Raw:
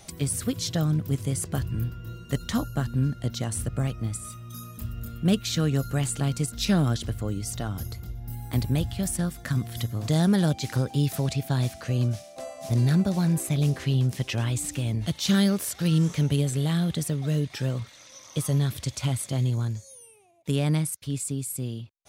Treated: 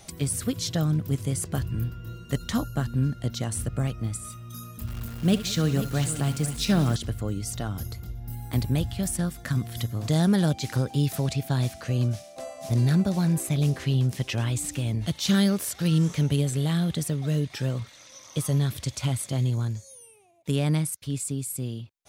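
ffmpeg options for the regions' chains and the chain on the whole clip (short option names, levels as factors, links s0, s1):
-filter_complex "[0:a]asettb=1/sr,asplit=3[s0][s1][s2];[s0]atrim=end=4.874[s3];[s1]atrim=start=4.87:end=6.96,asetpts=PTS-STARTPTS,afade=t=in:d=0.004:c=qsin,afade=t=out:st=2.086:d=0.004:c=qsin,acrusher=bits=8:dc=4:mix=0:aa=0.000001,aecho=1:1:69|186|493:0.211|0.119|0.251,atrim=end_sample=92169[s4];[s2]atrim=start=6.956[s5];[s3][s4]acrossfade=d=0.004:c1=hsin:c2=qsin[s6];[s6][s5]acrossfade=d=0.004:c1=qsin:c2=hsin"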